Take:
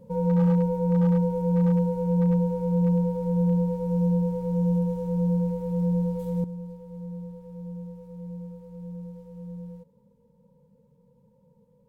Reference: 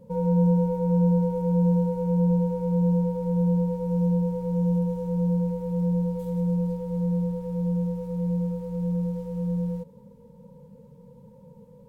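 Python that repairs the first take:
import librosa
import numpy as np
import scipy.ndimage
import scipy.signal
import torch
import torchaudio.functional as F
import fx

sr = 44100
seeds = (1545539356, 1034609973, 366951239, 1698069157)

y = fx.fix_declip(x, sr, threshold_db=-16.0)
y = fx.fix_level(y, sr, at_s=6.44, step_db=11.5)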